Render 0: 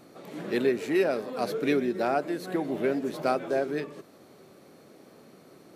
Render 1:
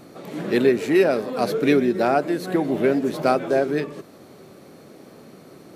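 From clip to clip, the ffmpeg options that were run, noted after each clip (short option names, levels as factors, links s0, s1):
-af "lowshelf=f=190:g=5,volume=2.11"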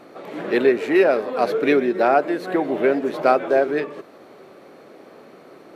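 -af "bass=f=250:g=-15,treble=f=4000:g=-13,volume=1.58"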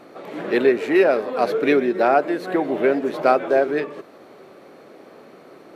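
-af anull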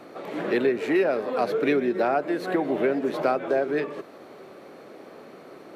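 -filter_complex "[0:a]acrossover=split=190[s0][s1];[s1]acompressor=threshold=0.0708:ratio=2.5[s2];[s0][s2]amix=inputs=2:normalize=0"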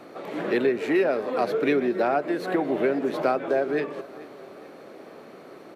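-af "aecho=1:1:433|866|1299|1732:0.1|0.051|0.026|0.0133"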